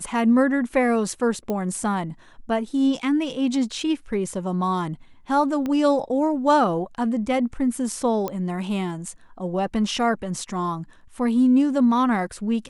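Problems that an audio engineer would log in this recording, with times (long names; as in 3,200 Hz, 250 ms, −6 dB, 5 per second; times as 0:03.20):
0:01.50: click −15 dBFS
0:05.66: click −16 dBFS
0:08.28: click −14 dBFS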